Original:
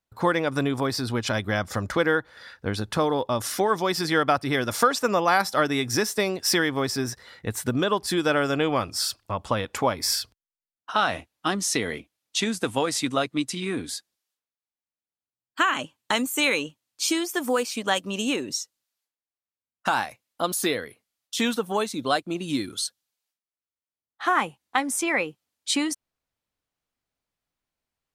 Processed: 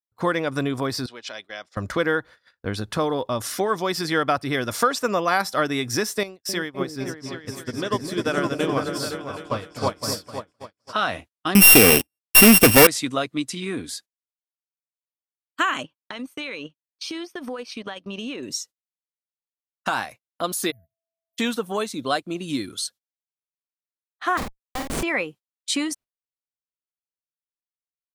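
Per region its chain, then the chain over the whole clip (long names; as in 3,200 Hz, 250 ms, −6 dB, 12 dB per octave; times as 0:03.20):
0:01.06–0:01.77: band-pass filter 730–4,900 Hz + parametric band 1,200 Hz −11 dB 1.9 octaves
0:06.23–0:10.93: echo whose low-pass opens from repeat to repeat 257 ms, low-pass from 400 Hz, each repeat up 2 octaves, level 0 dB + expander for the loud parts 2.5 to 1, over −37 dBFS
0:11.55–0:12.87: samples sorted by size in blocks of 16 samples + parametric band 13,000 Hz +14.5 dB 0.76 octaves + leveller curve on the samples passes 5
0:15.83–0:18.43: Savitzky-Golay smoothing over 15 samples + downward compressor 16 to 1, threshold −27 dBFS + transient designer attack −1 dB, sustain −8 dB
0:20.70–0:21.37: inverse Chebyshev band-stop filter 330–8,300 Hz, stop band 50 dB + low-shelf EQ 360 Hz −6.5 dB + steady tone 660 Hz −64 dBFS
0:24.37–0:25.03: comparator with hysteresis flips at −23.5 dBFS + double-tracking delay 49 ms −5 dB
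whole clip: notch filter 850 Hz, Q 12; noise gate −41 dBFS, range −26 dB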